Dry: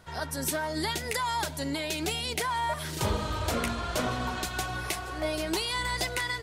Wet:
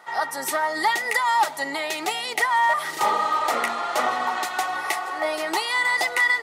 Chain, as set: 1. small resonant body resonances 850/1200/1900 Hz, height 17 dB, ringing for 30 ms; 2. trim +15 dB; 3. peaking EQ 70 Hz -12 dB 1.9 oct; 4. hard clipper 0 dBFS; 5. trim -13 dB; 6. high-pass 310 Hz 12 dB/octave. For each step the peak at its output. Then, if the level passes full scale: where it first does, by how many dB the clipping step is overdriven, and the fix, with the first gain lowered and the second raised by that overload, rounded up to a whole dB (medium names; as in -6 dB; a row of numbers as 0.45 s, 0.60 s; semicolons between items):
-10.0 dBFS, +5.0 dBFS, +4.5 dBFS, 0.0 dBFS, -13.0 dBFS, -10.0 dBFS; step 2, 4.5 dB; step 2 +10 dB, step 5 -8 dB